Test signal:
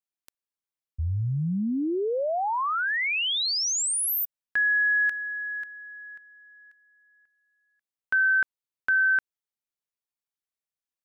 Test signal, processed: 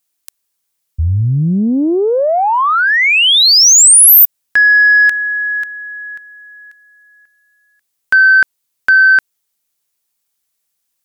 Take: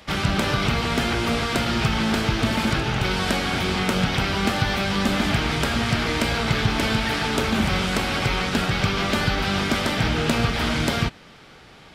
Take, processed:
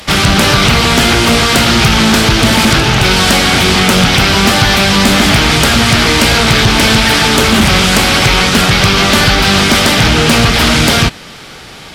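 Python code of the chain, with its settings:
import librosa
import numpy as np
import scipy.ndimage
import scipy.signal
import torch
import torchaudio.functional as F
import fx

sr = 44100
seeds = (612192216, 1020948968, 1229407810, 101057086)

p1 = fx.high_shelf(x, sr, hz=4400.0, db=11.0)
p2 = fx.fold_sine(p1, sr, drive_db=11, ceiling_db=-3.5)
p3 = p1 + (p2 * 10.0 ** (-9.0 / 20.0))
p4 = fx.doppler_dist(p3, sr, depth_ms=0.19)
y = p4 * 10.0 ** (4.5 / 20.0)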